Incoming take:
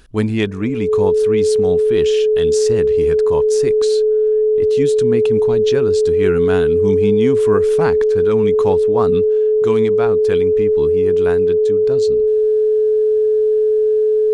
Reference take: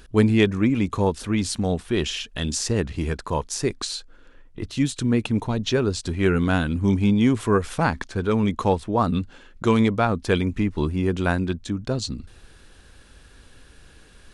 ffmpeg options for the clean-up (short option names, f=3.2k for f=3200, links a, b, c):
-af "bandreject=f=430:w=30,asetnsamples=n=441:p=0,asendcmd='9.21 volume volume 3dB',volume=0dB"